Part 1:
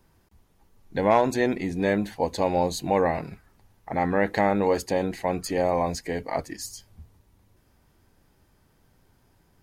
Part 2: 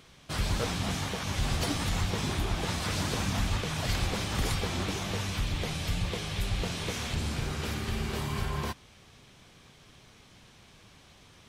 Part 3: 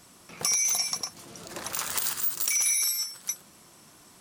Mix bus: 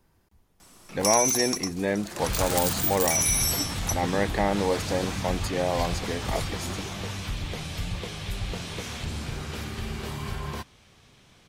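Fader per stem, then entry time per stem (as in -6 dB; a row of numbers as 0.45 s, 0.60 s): -3.0 dB, -1.0 dB, +0.5 dB; 0.00 s, 1.90 s, 0.60 s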